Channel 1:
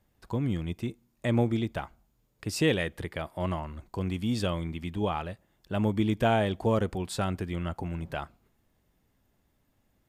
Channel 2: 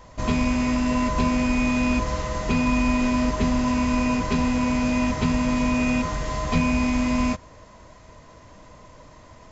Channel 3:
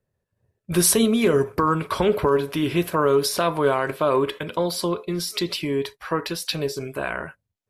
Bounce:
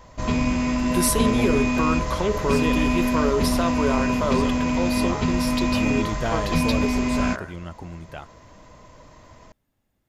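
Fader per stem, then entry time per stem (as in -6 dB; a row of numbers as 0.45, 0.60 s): -3.0, -0.5, -4.5 dB; 0.00, 0.00, 0.20 s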